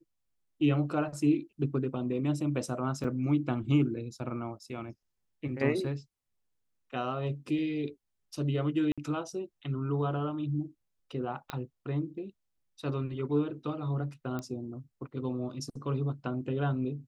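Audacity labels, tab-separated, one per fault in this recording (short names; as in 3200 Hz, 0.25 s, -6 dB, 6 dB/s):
3.040000	3.040000	gap 4 ms
8.920000	8.980000	gap 56 ms
11.500000	11.500000	pop -20 dBFS
14.390000	14.390000	pop -23 dBFS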